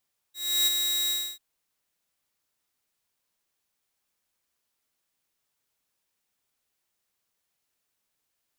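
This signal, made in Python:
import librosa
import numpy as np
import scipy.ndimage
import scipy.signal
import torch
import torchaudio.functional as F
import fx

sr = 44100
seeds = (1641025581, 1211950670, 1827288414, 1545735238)

y = fx.adsr_tone(sr, wave='saw', hz=3820.0, attack_ms=327.0, decay_ms=24.0, sustain_db=-5.0, held_s=0.76, release_ms=283.0, level_db=-17.0)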